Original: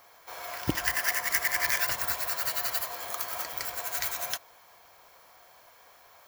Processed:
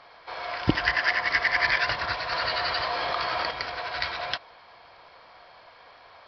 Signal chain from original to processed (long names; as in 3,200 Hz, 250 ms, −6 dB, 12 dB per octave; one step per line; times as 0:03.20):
downsampling to 11,025 Hz
0:02.32–0:03.51: envelope flattener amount 70%
level +6.5 dB